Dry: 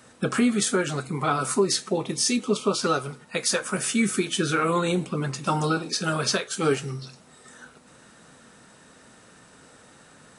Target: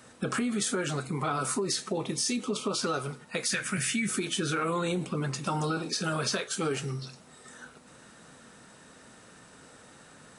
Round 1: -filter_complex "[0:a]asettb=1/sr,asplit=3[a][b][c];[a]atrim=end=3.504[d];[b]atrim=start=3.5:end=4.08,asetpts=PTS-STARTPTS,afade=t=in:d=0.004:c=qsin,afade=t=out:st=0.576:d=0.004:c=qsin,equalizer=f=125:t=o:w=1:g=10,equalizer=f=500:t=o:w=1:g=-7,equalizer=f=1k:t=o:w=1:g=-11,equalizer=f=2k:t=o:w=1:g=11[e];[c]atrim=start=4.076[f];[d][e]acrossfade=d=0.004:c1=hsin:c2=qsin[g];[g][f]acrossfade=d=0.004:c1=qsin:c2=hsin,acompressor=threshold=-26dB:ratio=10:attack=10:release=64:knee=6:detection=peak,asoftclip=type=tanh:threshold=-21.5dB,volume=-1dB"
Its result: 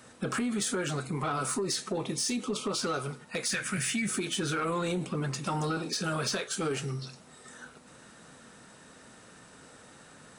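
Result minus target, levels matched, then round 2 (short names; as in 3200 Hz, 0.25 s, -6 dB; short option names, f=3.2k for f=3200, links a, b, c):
soft clip: distortion +19 dB
-filter_complex "[0:a]asettb=1/sr,asplit=3[a][b][c];[a]atrim=end=3.504[d];[b]atrim=start=3.5:end=4.08,asetpts=PTS-STARTPTS,afade=t=in:d=0.004:c=qsin,afade=t=out:st=0.576:d=0.004:c=qsin,equalizer=f=125:t=o:w=1:g=10,equalizer=f=500:t=o:w=1:g=-7,equalizer=f=1k:t=o:w=1:g=-11,equalizer=f=2k:t=o:w=1:g=11[e];[c]atrim=start=4.076[f];[d][e]acrossfade=d=0.004:c1=hsin:c2=qsin[g];[g][f]acrossfade=d=0.004:c1=qsin:c2=hsin,acompressor=threshold=-26dB:ratio=10:attack=10:release=64:knee=6:detection=peak,asoftclip=type=tanh:threshold=-10dB,volume=-1dB"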